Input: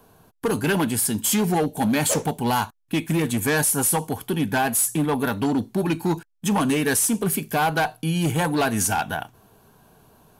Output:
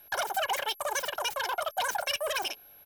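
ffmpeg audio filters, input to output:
-filter_complex "[0:a]acrossover=split=6200[a][b];[b]aeval=exprs='(mod(8.41*val(0)+1,2)-1)/8.41':c=same[c];[a][c]amix=inputs=2:normalize=0,aeval=exprs='val(0)+0.00794*sin(2*PI*3200*n/s)':c=same,aecho=1:1:4.8:0.32,asetrate=160524,aresample=44100,volume=-9dB"

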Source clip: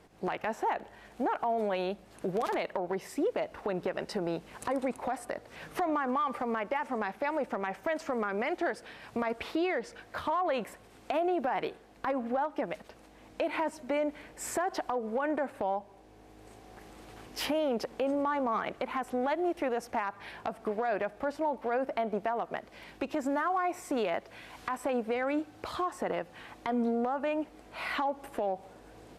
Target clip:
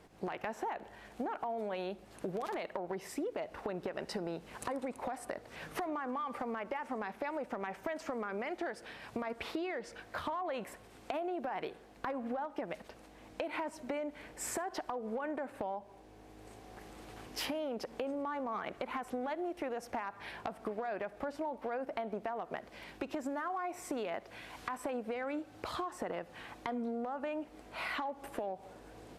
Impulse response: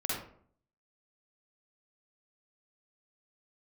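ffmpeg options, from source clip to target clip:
-filter_complex "[0:a]acompressor=threshold=-34dB:ratio=6,asplit=2[a][b];[1:a]atrim=start_sample=2205[c];[b][c]afir=irnorm=-1:irlink=0,volume=-26dB[d];[a][d]amix=inputs=2:normalize=0,volume=-1dB"

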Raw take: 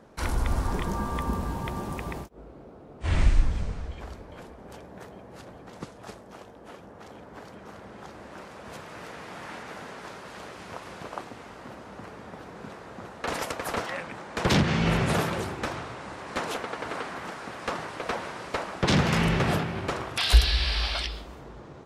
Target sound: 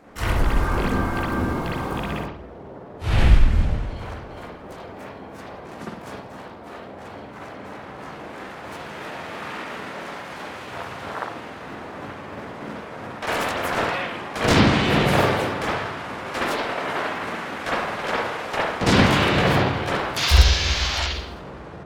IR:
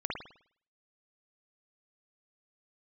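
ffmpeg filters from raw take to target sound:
-filter_complex "[0:a]bandreject=f=60:t=h:w=6,bandreject=f=120:t=h:w=6,bandreject=f=180:t=h:w=6,bandreject=f=240:t=h:w=6,bandreject=f=300:t=h:w=6,bandreject=f=360:t=h:w=6,bandreject=f=420:t=h:w=6,bandreject=f=480:t=h:w=6[a];[1:a]atrim=start_sample=2205[b];[a][b]afir=irnorm=-1:irlink=0,asplit=2[c][d];[d]asetrate=58866,aresample=44100,atempo=0.749154,volume=0dB[e];[c][e]amix=inputs=2:normalize=0"

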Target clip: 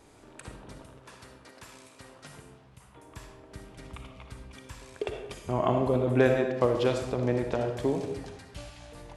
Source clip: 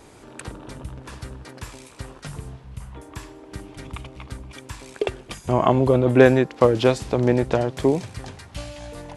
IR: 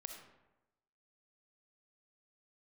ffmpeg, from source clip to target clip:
-filter_complex "[0:a]asettb=1/sr,asplit=3[a][b][c];[a]atrim=end=0.784[d];[b]atrim=start=0.78:end=3.04,asetpts=PTS-STARTPTS,afade=t=in:d=0.004:c=qsin,afade=t=out:st=2.256:d=0.004:c=qsin,highpass=f=300:p=1[e];[c]atrim=start=3.036[f];[d][e]acrossfade=d=0.004:c1=hsin:c2=qsin[g];[g][f]acrossfade=d=0.004:c1=qsin:c2=hsin[h];[1:a]atrim=start_sample=2205[i];[h][i]afir=irnorm=-1:irlink=0,volume=-4dB"

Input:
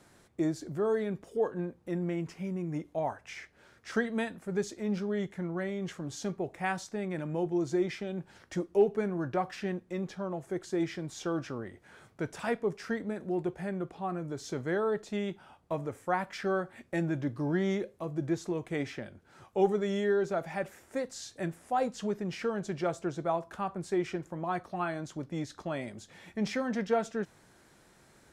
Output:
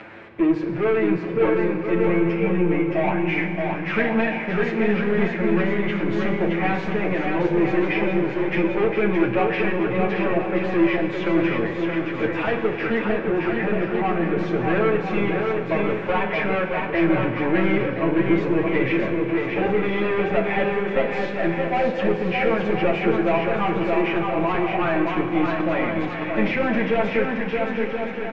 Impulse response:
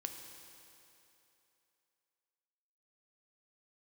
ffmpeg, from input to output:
-filter_complex "[0:a]asplit=2[a][b];[b]highpass=f=720:p=1,volume=27dB,asoftclip=type=tanh:threshold=-14dB[c];[a][c]amix=inputs=2:normalize=0,lowpass=f=1.2k:p=1,volume=-6dB,acompressor=mode=upward:threshold=-38dB:ratio=2.5,aeval=exprs='0.2*(cos(1*acos(clip(val(0)/0.2,-1,1)))-cos(1*PI/2))+0.00708*(cos(4*acos(clip(val(0)/0.2,-1,1)))-cos(4*PI/2))':c=same,lowpass=f=2.5k:t=q:w=3.4,asplit=2[d][e];[e]adelay=31,volume=-14dB[f];[d][f]amix=inputs=2:normalize=0,aecho=1:1:620|1023|1285|1455|1566:0.631|0.398|0.251|0.158|0.1,asplit=2[g][h];[1:a]atrim=start_sample=2205,lowshelf=f=430:g=8.5,adelay=9[i];[h][i]afir=irnorm=-1:irlink=0,volume=4dB[j];[g][j]amix=inputs=2:normalize=0,volume=-6.5dB"

